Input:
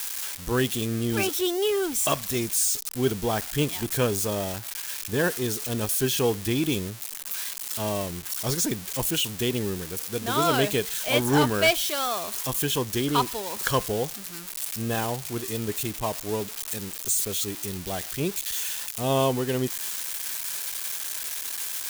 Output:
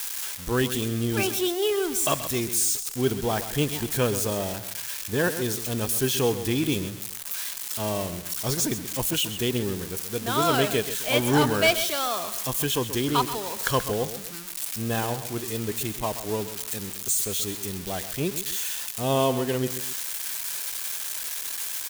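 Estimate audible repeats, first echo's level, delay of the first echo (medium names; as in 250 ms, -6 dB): 2, -12.0 dB, 131 ms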